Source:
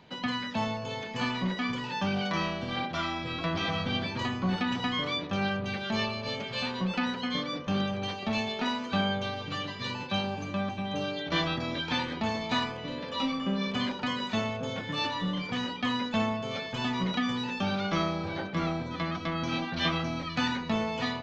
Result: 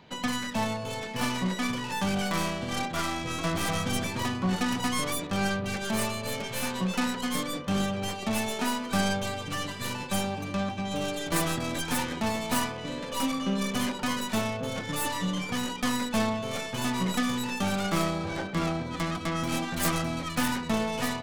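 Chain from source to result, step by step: tracing distortion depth 0.36 ms; trim +1.5 dB

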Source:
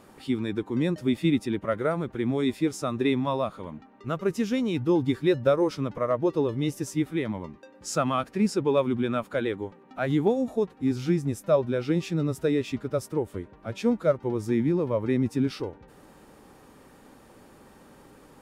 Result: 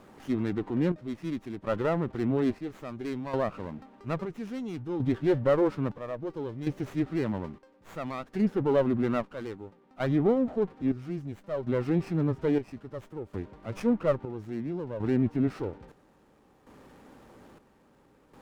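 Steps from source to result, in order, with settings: transient shaper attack -4 dB, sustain +2 dB; square tremolo 0.6 Hz, depth 65%, duty 55%; low-pass that closes with the level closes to 2.1 kHz, closed at -24 dBFS; sliding maximum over 9 samples

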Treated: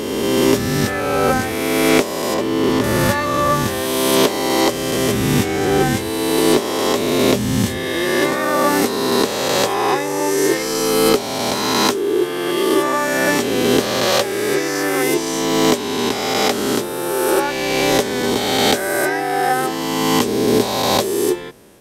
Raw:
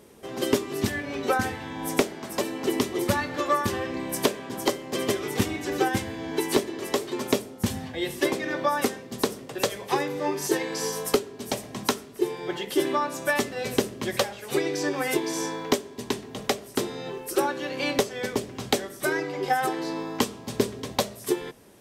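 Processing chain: reverse spectral sustain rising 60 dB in 2.35 s; 2.34–2.84 s: treble shelf 4.3 kHz -10 dB; trim +3.5 dB

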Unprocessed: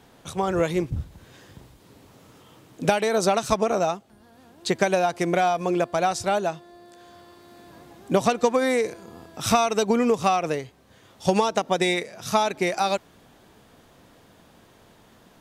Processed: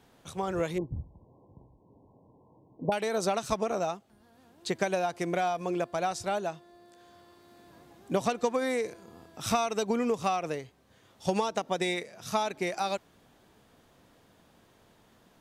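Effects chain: 0.78–2.92 s: brick-wall FIR low-pass 1.1 kHz; trim -7.5 dB

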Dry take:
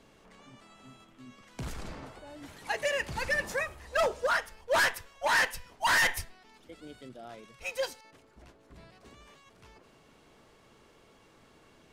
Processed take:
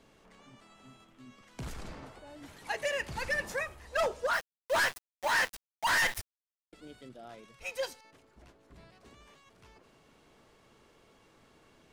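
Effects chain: 4.33–6.73 s: small samples zeroed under -34.5 dBFS; trim -2.5 dB

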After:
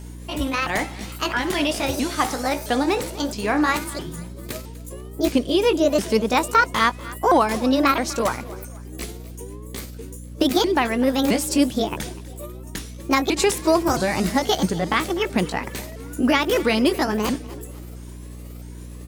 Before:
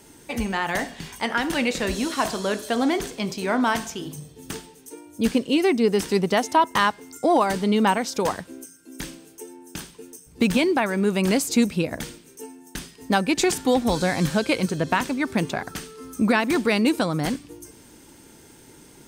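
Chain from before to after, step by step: sawtooth pitch modulation +7 st, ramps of 665 ms; hum 60 Hz, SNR 14 dB; frequency-shifting echo 247 ms, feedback 41%, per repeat +34 Hz, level -19 dB; trim +2.5 dB

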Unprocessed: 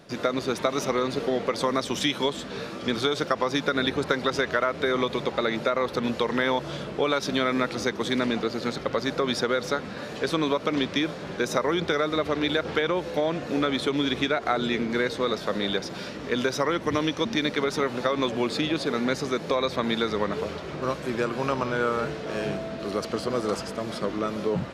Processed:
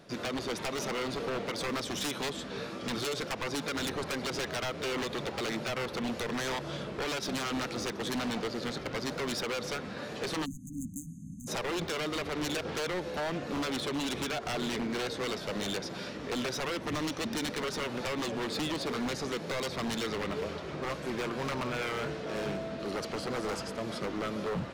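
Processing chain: wavefolder -23.5 dBFS; spectral selection erased 10.45–11.48 s, 300–6200 Hz; trim -4 dB

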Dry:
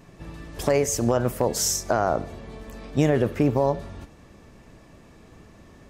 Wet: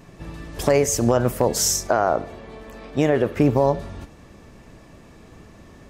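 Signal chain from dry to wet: 1.87–3.37 s: tone controls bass -7 dB, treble -6 dB; trim +3.5 dB

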